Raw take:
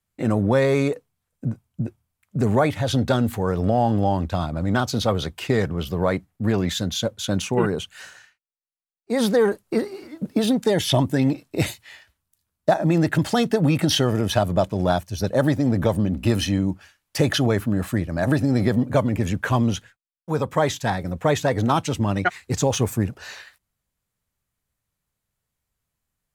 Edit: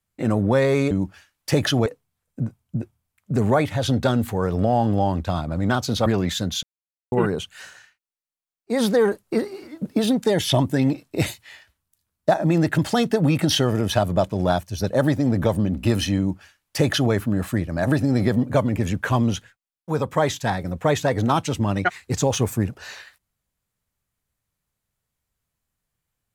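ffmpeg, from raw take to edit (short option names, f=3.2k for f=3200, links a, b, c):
-filter_complex "[0:a]asplit=6[a][b][c][d][e][f];[a]atrim=end=0.912[g];[b]atrim=start=16.578:end=17.532[h];[c]atrim=start=0.908:end=5.112[i];[d]atrim=start=6.458:end=7.03,asetpts=PTS-STARTPTS,afade=t=out:st=0.568:d=0.004:c=hsin[j];[e]atrim=start=7.03:end=7.52,asetpts=PTS-STARTPTS,volume=0[k];[f]atrim=start=7.52,asetpts=PTS-STARTPTS,afade=t=in:d=0.004:c=hsin[l];[g][h]acrossfade=d=0.004:c1=hsin:c2=hsin[m];[m][i]acrossfade=d=0.004:c1=hsin:c2=hsin[n];[j][k][l]concat=n=3:v=0:a=1[o];[n][o]acrossfade=d=0.004:c1=hsin:c2=hsin"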